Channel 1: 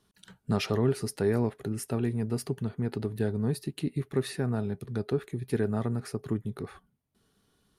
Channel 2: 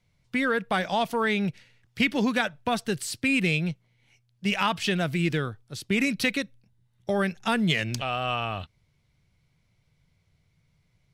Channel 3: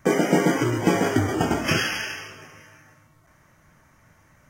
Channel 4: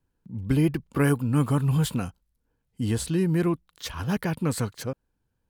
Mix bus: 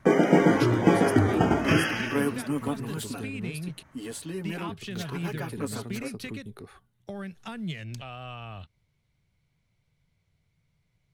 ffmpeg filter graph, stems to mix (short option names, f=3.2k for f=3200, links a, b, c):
-filter_complex "[0:a]equalizer=f=140:w=0.95:g=-9.5,acrossover=split=240|3000[a][b][c];[b]acompressor=threshold=-44dB:ratio=6[d];[a][d][c]amix=inputs=3:normalize=0,volume=-0.5dB,asplit=3[e][f][g];[e]atrim=end=3.83,asetpts=PTS-STARTPTS,afade=t=out:st=3.826:d=0.004:c=hsin[h];[f]atrim=start=3.83:end=4.69,asetpts=PTS-STARTPTS,volume=0[i];[g]atrim=start=4.69,asetpts=PTS-STARTPTS,afade=t=in:d=0.004:c=hsin[j];[h][i][j]concat=n=3:v=0:a=1[k];[1:a]acrossover=split=170[l][m];[m]acompressor=threshold=-36dB:ratio=3[n];[l][n]amix=inputs=2:normalize=0,volume=-4.5dB[o];[2:a]lowpass=f=2k:p=1,volume=0.5dB[p];[3:a]highpass=f=210:w=0.5412,highpass=f=210:w=1.3066,aecho=1:1:7.1:0.83,adelay=1150,volume=-7.5dB[q];[k][o][p][q]amix=inputs=4:normalize=0,equalizer=f=5.2k:t=o:w=0.4:g=-2.5"